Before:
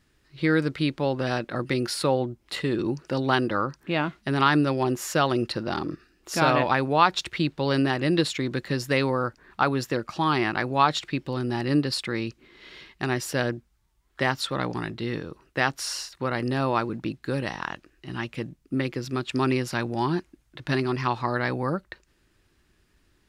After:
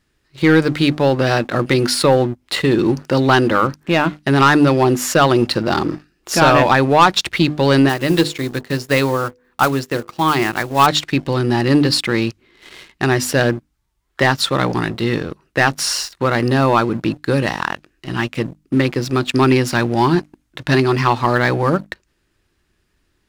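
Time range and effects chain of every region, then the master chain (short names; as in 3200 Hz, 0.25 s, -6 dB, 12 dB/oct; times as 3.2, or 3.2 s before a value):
7.89–10.87 block floating point 5-bit + de-hum 49.66 Hz, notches 10 + upward expander, over -32 dBFS
whole clip: notches 50/100/150/200/250/300 Hz; sample leveller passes 2; gain +4 dB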